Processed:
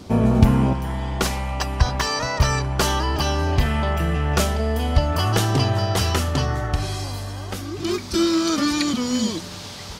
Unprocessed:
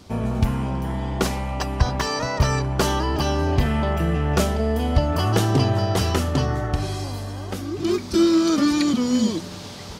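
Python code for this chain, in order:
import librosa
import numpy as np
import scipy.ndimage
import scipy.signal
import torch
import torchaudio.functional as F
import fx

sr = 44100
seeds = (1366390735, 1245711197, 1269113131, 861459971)

y = fx.peak_eq(x, sr, hz=280.0, db=fx.steps((0.0, 5.0), (0.73, -6.5)), octaves=2.9)
y = F.gain(torch.from_numpy(y), 3.5).numpy()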